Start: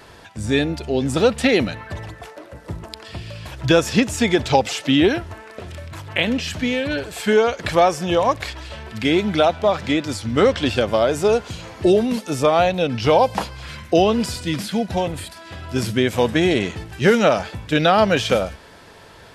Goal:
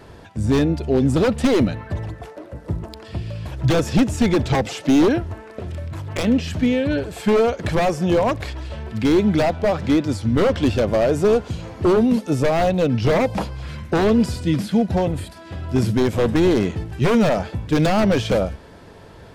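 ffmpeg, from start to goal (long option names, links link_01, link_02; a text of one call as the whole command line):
ffmpeg -i in.wav -af "aeval=exprs='0.224*(abs(mod(val(0)/0.224+3,4)-2)-1)':channel_layout=same,tiltshelf=frequency=740:gain=6" out.wav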